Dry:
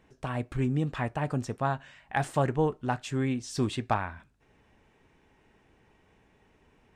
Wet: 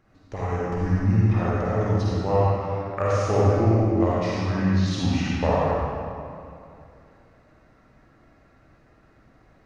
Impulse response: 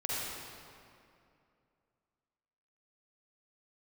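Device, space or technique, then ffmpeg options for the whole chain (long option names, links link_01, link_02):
slowed and reverbed: -filter_complex "[0:a]asetrate=31752,aresample=44100[link_01];[1:a]atrim=start_sample=2205[link_02];[link_01][link_02]afir=irnorm=-1:irlink=0,volume=1.5dB"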